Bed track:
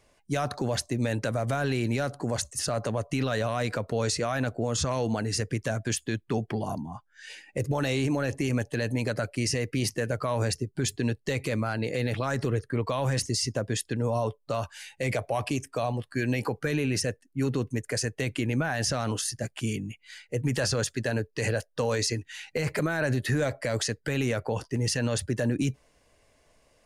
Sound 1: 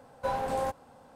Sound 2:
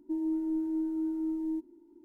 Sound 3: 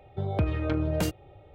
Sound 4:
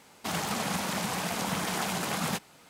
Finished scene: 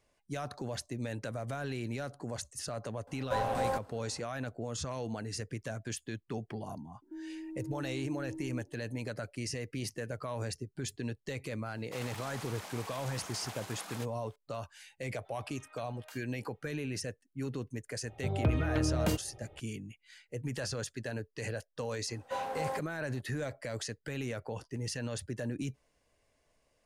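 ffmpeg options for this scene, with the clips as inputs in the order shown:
-filter_complex "[1:a]asplit=2[a][b];[3:a]asplit=2[c][d];[0:a]volume=-10dB[e];[a]acontrast=79[f];[2:a]alimiter=level_in=8.5dB:limit=-24dB:level=0:latency=1:release=71,volume=-8.5dB[g];[4:a]highpass=400[h];[c]highpass=f=860:w=0.5412,highpass=f=860:w=1.3066[i];[b]highpass=f=340:p=1[j];[f]atrim=end=1.15,asetpts=PTS-STARTPTS,volume=-8.5dB,afade=t=in:d=0.004:c=hsin,afade=t=out:st=1.146:d=0.004:c=hsin,adelay=3070[k];[g]atrim=end=2.04,asetpts=PTS-STARTPTS,volume=-7dB,afade=t=in:d=0.004:c=hsin,afade=t=out:st=2.036:d=0.004:c=hsin,adelay=7020[l];[h]atrim=end=2.69,asetpts=PTS-STARTPTS,volume=-13dB,afade=t=in:d=0.004:c=hsin,afade=t=out:st=2.686:d=0.004:c=hsin,adelay=11670[m];[i]atrim=end=1.54,asetpts=PTS-STARTPTS,volume=-16.5dB,afade=t=in:d=0.004:c=hsin,afade=t=out:st=1.536:d=0.004:c=hsin,adelay=665028S[n];[d]atrim=end=1.54,asetpts=PTS-STARTPTS,volume=-3dB,afade=t=in:d=0.004:c=hsin,afade=t=out:st=1.536:d=0.004:c=hsin,adelay=18060[o];[j]atrim=end=1.15,asetpts=PTS-STARTPTS,volume=-4.5dB,afade=t=in:d=0.02,afade=t=out:st=1.13:d=0.02,adelay=22070[p];[e][k][l][m][n][o][p]amix=inputs=7:normalize=0"

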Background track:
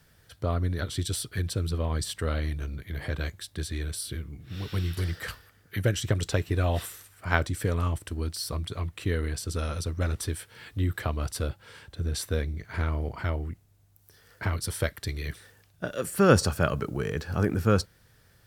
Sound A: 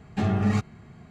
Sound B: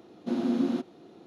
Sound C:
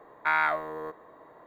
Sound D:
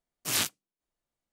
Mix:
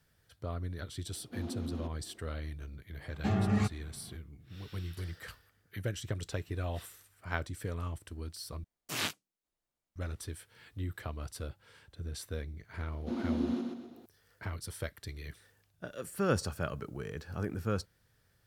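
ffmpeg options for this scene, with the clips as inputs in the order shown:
-filter_complex "[2:a]asplit=2[a][b];[0:a]volume=-10.5dB[c];[a]alimiter=limit=-24dB:level=0:latency=1:release=64[d];[4:a]acrossover=split=4200[e][f];[f]acompressor=threshold=-35dB:ratio=4:attack=1:release=60[g];[e][g]amix=inputs=2:normalize=0[h];[b]aecho=1:1:126|252|378|504|630:0.668|0.267|0.107|0.0428|0.0171[i];[c]asplit=2[j][k];[j]atrim=end=8.644[l];[h]atrim=end=1.32,asetpts=PTS-STARTPTS,volume=-2.5dB[m];[k]atrim=start=9.956[n];[d]atrim=end=1.26,asetpts=PTS-STARTPTS,volume=-9dB,afade=t=in:d=0.004:c=hsin,afade=t=out:st=1.256:d=0.004:c=hsin,adelay=1060[o];[1:a]atrim=end=1.1,asetpts=PTS-STARTPTS,volume=-5.5dB,afade=t=in:d=0.004:c=hsin,afade=t=out:st=1.096:d=0.004:c=hsin,adelay=3070[p];[i]atrim=end=1.26,asetpts=PTS-STARTPTS,volume=-7dB,afade=t=in:d=0.004:c=hsin,afade=t=out:st=1.256:d=0.004:c=hsin,adelay=12800[q];[l][m]acrossfade=d=0.004:c1=hsin:c2=hsin[r];[r][n]acrossfade=d=0.004:c1=hsin:c2=hsin[s];[s][o][p][q]amix=inputs=4:normalize=0"

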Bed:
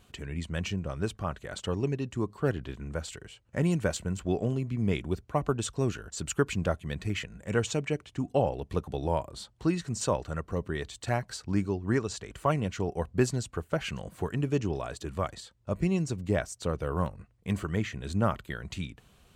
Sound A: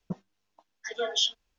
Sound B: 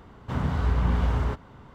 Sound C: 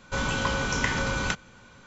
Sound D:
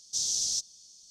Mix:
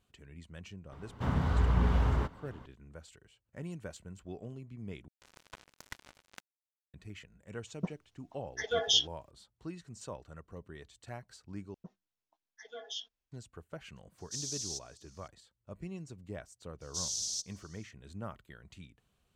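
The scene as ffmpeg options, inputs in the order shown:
-filter_complex "[1:a]asplit=2[a][b];[4:a]asplit=2[c][d];[0:a]volume=-15.5dB[e];[3:a]acrusher=bits=2:mix=0:aa=0.5[f];[d]acontrast=48[g];[e]asplit=3[h][i][j];[h]atrim=end=5.084[k];[f]atrim=end=1.86,asetpts=PTS-STARTPTS,volume=-17.5dB[l];[i]atrim=start=6.936:end=11.744[m];[b]atrim=end=1.58,asetpts=PTS-STARTPTS,volume=-15.5dB[n];[j]atrim=start=13.316[o];[2:a]atrim=end=1.74,asetpts=PTS-STARTPTS,volume=-3.5dB,afade=t=in:d=0.004:c=hsin,afade=t=out:st=1.736:d=0.004:c=hsin,adelay=920[p];[a]atrim=end=1.58,asetpts=PTS-STARTPTS,volume=-0.5dB,afade=t=in:d=0.004:c=hsin,afade=t=out:st=1.576:d=0.004:c=hsin,adelay=7730[q];[c]atrim=end=1.1,asetpts=PTS-STARTPTS,volume=-10dB,afade=t=in:d=0.004:c=hsin,afade=t=out:st=1.096:d=0.004:c=hsin,adelay=14180[r];[g]atrim=end=1.1,asetpts=PTS-STARTPTS,volume=-12.5dB,afade=t=in:d=0.004:c=hsin,afade=t=out:st=1.096:d=0.004:c=hsin,adelay=16810[s];[k][l]acrossfade=d=0.004:c1=hsin:c2=hsin[t];[t][m]acrossfade=d=0.004:c1=hsin:c2=hsin[u];[u][n]acrossfade=d=0.004:c1=hsin:c2=hsin[v];[v][o]acrossfade=d=0.004:c1=hsin:c2=hsin[w];[w][p][q][r][s]amix=inputs=5:normalize=0"

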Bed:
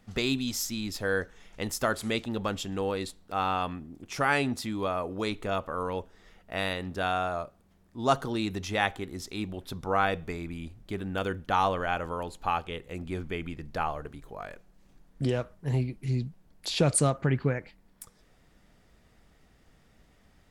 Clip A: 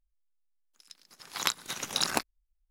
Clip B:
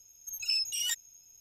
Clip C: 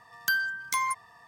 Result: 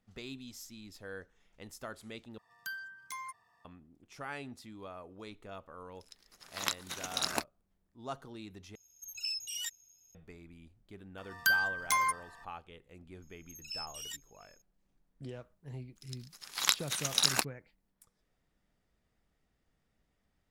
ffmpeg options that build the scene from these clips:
-filter_complex "[3:a]asplit=2[a][b];[1:a]asplit=2[c][d];[2:a]asplit=2[e][f];[0:a]volume=-16.5dB[g];[b]aecho=1:1:555:0.0794[h];[f]asplit=2[i][j];[j]adelay=699.7,volume=-15dB,highshelf=f=4k:g=-15.7[k];[i][k]amix=inputs=2:normalize=0[l];[d]tiltshelf=f=1.3k:g=-5[m];[g]asplit=3[n][o][p];[n]atrim=end=2.384[q];[a]atrim=end=1.27,asetpts=PTS-STARTPTS,volume=-15dB[r];[o]atrim=start=3.646:end=8.754[s];[e]atrim=end=1.4,asetpts=PTS-STARTPTS,volume=-7dB[t];[p]atrim=start=10.146[u];[c]atrim=end=2.7,asetpts=PTS-STARTPTS,volume=-5dB,afade=t=in:d=0.004:c=hsin,afade=t=out:st=2.696:d=0.004:c=hsin,adelay=229761S[v];[h]atrim=end=1.27,asetpts=PTS-STARTPTS,volume=-1dB,afade=t=in:d=0.004:c=hsin,afade=t=out:st=1.266:d=0.004:c=hsin,adelay=11180[w];[l]atrim=end=1.4,asetpts=PTS-STARTPTS,volume=-12dB,afade=t=in:d=0.004:c=hsin,afade=t=out:st=1.396:d=0.004:c=hsin,adelay=13220[x];[m]atrim=end=2.7,asetpts=PTS-STARTPTS,volume=-2.5dB,afade=t=in:d=0.004:c=hsin,afade=t=out:st=2.696:d=0.004:c=hsin,adelay=15220[y];[q][r]acrossfade=d=0.004:c1=hsin:c2=hsin[z];[z][s]acrossfade=d=0.004:c1=hsin:c2=hsin[aa];[aa][t]acrossfade=d=0.004:c1=hsin:c2=hsin[ab];[ab][u]acrossfade=d=0.004:c1=hsin:c2=hsin[ac];[ac][v][w][x][y]amix=inputs=5:normalize=0"

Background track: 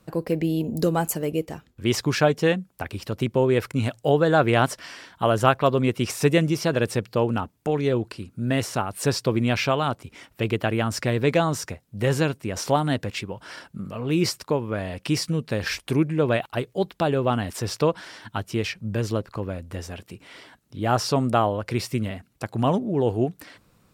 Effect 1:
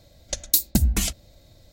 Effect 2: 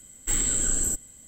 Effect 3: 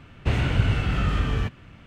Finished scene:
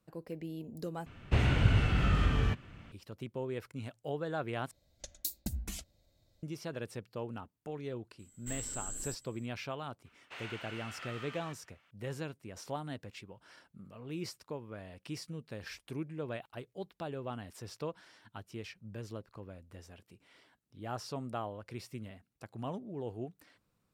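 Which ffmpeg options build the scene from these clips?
-filter_complex "[3:a]asplit=2[a][b];[0:a]volume=-18dB[c];[b]highpass=950[d];[c]asplit=3[e][f][g];[e]atrim=end=1.064[h];[a]atrim=end=1.86,asetpts=PTS-STARTPTS,volume=-4.5dB[i];[f]atrim=start=2.916:end=4.714[j];[1:a]atrim=end=1.72,asetpts=PTS-STARTPTS,volume=-18dB[k];[g]atrim=start=6.426[l];[2:a]atrim=end=1.27,asetpts=PTS-STARTPTS,volume=-16.5dB,afade=t=in:d=0.004:c=hsin,afade=t=out:st=1.266:d=0.004:c=hsin,adelay=8190[m];[d]atrim=end=1.86,asetpts=PTS-STARTPTS,volume=-13dB,afade=t=in:d=0.004:c=hsin,afade=t=out:st=1.856:d=0.004:c=hsin,adelay=10050[n];[h][i]acrossfade=d=0.004:c1=hsin:c2=hsin[o];[o][j]acrossfade=d=0.004:c1=hsin:c2=hsin[p];[p][k]acrossfade=d=0.004:c1=hsin:c2=hsin[q];[q][l]acrossfade=d=0.004:c1=hsin:c2=hsin[r];[r][m][n]amix=inputs=3:normalize=0"

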